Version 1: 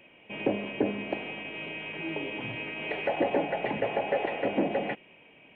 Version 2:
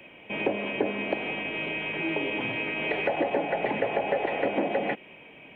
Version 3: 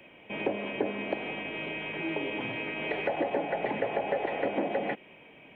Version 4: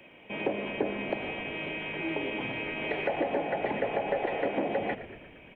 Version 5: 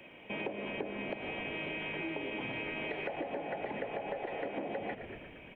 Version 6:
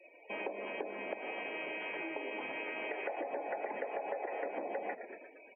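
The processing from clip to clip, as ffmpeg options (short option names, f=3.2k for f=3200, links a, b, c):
-filter_complex "[0:a]bandreject=f=2.8k:w=23,acrossover=split=200|490[a][b][c];[a]acompressor=threshold=-53dB:ratio=4[d];[b]acompressor=threshold=-38dB:ratio=4[e];[c]acompressor=threshold=-34dB:ratio=4[f];[d][e][f]amix=inputs=3:normalize=0,volume=7dB"
-af "equalizer=f=2.6k:w=3.6:g=-3,volume=-3dB"
-filter_complex "[0:a]asplit=8[a][b][c][d][e][f][g][h];[b]adelay=116,afreqshift=-55,volume=-13.5dB[i];[c]adelay=232,afreqshift=-110,volume=-17.5dB[j];[d]adelay=348,afreqshift=-165,volume=-21.5dB[k];[e]adelay=464,afreqshift=-220,volume=-25.5dB[l];[f]adelay=580,afreqshift=-275,volume=-29.6dB[m];[g]adelay=696,afreqshift=-330,volume=-33.6dB[n];[h]adelay=812,afreqshift=-385,volume=-37.6dB[o];[a][i][j][k][l][m][n][o]amix=inputs=8:normalize=0"
-af "acompressor=threshold=-35dB:ratio=6"
-af "highpass=430,lowpass=2.4k,afftdn=nr=36:nf=-52,volume=1.5dB"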